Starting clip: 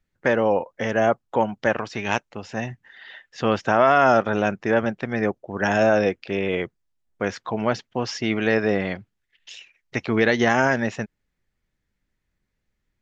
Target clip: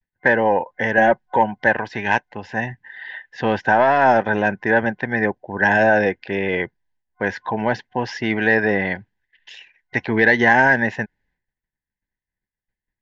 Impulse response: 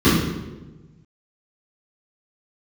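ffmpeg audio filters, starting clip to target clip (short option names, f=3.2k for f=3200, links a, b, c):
-filter_complex "[0:a]lowpass=4k,acontrast=34,asettb=1/sr,asplit=3[a][b][c];[a]atrim=end=0.974[d];[b]atrim=start=0.97:end=1.37,asetpts=PTS-STARTPTS,afade=t=in:d=0.004:c=qsin,afade=t=out:st=0.396:d=0.004:c=qsin,aecho=1:1:5.4:0.74,atrim=end_sample=17640[e];[c]atrim=start=1.366[f];[d][e]acrossfade=d=0.004:c1=hsin:c2=qsin[g];[g][f]acrossfade=d=0.004:c1=qsin:c2=hsin,agate=range=-33dB:threshold=-59dB:ratio=3:detection=peak,superequalizer=9b=2:10b=0.398:11b=2.51,volume=-3.5dB"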